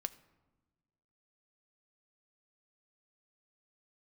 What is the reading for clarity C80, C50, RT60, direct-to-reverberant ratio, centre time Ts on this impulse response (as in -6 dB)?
19.5 dB, 17.5 dB, 1.2 s, 11.0 dB, 3 ms